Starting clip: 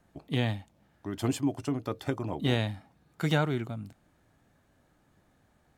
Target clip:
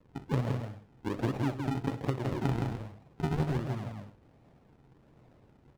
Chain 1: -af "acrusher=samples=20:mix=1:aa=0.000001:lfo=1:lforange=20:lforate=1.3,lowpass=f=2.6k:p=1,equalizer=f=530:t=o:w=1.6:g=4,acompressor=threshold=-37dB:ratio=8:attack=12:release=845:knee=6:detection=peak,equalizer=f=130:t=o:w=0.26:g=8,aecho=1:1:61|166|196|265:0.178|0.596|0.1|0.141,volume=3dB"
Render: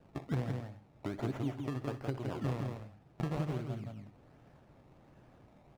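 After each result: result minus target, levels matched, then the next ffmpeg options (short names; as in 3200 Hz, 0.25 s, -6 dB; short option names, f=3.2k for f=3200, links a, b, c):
compressor: peak gain reduction +6 dB; decimation with a swept rate: distortion -8 dB
-af "acrusher=samples=20:mix=1:aa=0.000001:lfo=1:lforange=20:lforate=1.3,lowpass=f=2.6k:p=1,equalizer=f=530:t=o:w=1.6:g=4,acompressor=threshold=-31dB:ratio=8:attack=12:release=845:knee=6:detection=peak,equalizer=f=130:t=o:w=0.26:g=8,aecho=1:1:61|166|196|265:0.178|0.596|0.1|0.141,volume=3dB"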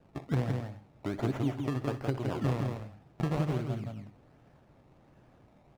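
decimation with a swept rate: distortion -8 dB
-af "acrusher=samples=54:mix=1:aa=0.000001:lfo=1:lforange=54:lforate=1.3,lowpass=f=2.6k:p=1,equalizer=f=530:t=o:w=1.6:g=4,acompressor=threshold=-31dB:ratio=8:attack=12:release=845:knee=6:detection=peak,equalizer=f=130:t=o:w=0.26:g=8,aecho=1:1:61|166|196|265:0.178|0.596|0.1|0.141,volume=3dB"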